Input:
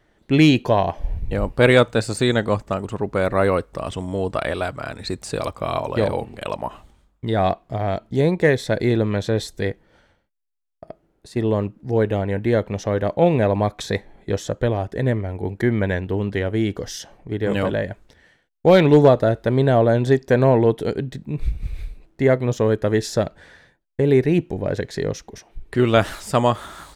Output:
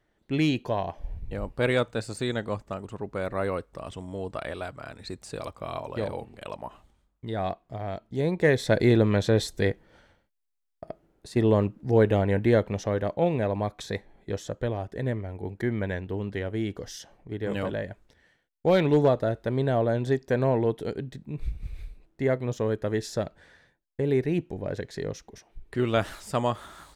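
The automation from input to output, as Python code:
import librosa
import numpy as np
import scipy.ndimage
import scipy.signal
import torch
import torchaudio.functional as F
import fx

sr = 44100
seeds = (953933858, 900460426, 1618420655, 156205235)

y = fx.gain(x, sr, db=fx.line((8.1, -10.5), (8.72, -1.0), (12.39, -1.0), (13.3, -8.5)))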